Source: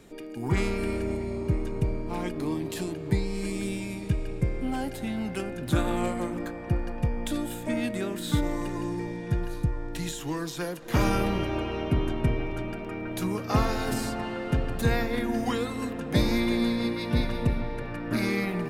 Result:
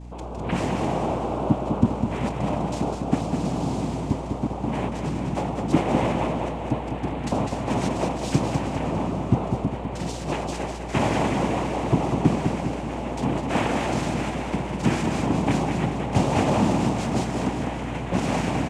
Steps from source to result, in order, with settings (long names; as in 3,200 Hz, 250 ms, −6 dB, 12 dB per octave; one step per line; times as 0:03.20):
rippled gain that drifts along the octave scale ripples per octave 1.9, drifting −0.3 Hz, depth 13 dB
tilt shelving filter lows +3 dB
cochlear-implant simulation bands 4
mains hum 60 Hz, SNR 13 dB
repeating echo 202 ms, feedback 49%, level −6 dB